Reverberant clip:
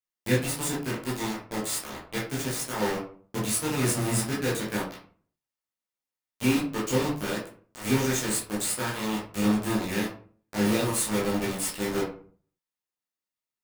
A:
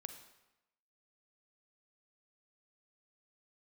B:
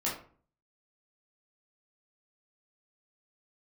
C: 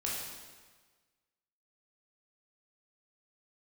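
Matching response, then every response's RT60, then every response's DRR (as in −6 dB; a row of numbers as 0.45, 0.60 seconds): B; 0.95, 0.45, 1.4 seconds; 7.5, −7.0, −5.0 decibels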